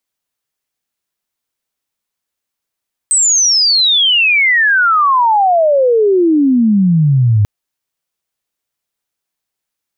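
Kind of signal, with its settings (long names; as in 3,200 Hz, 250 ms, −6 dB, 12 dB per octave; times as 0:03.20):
glide logarithmic 8,300 Hz → 100 Hz −8 dBFS → −7 dBFS 4.34 s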